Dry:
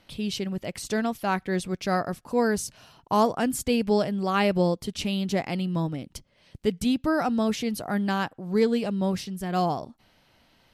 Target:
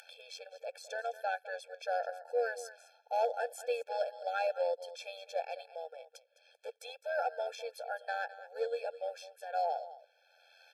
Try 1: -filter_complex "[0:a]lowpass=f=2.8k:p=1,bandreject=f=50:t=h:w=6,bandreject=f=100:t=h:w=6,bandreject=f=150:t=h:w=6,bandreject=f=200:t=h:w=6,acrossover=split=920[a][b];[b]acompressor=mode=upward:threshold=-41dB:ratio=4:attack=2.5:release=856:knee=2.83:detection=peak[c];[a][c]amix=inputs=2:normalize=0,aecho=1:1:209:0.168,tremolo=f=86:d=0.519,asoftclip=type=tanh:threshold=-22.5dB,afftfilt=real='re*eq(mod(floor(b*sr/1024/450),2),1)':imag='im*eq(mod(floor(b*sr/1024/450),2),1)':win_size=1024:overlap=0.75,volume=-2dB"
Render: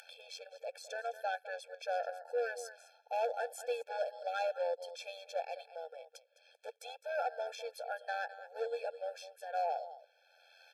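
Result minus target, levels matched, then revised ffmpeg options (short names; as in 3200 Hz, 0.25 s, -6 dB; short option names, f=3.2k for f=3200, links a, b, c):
soft clip: distortion +8 dB
-filter_complex "[0:a]lowpass=f=2.8k:p=1,bandreject=f=50:t=h:w=6,bandreject=f=100:t=h:w=6,bandreject=f=150:t=h:w=6,bandreject=f=200:t=h:w=6,acrossover=split=920[a][b];[b]acompressor=mode=upward:threshold=-41dB:ratio=4:attack=2.5:release=856:knee=2.83:detection=peak[c];[a][c]amix=inputs=2:normalize=0,aecho=1:1:209:0.168,tremolo=f=86:d=0.519,asoftclip=type=tanh:threshold=-15.5dB,afftfilt=real='re*eq(mod(floor(b*sr/1024/450),2),1)':imag='im*eq(mod(floor(b*sr/1024/450),2),1)':win_size=1024:overlap=0.75,volume=-2dB"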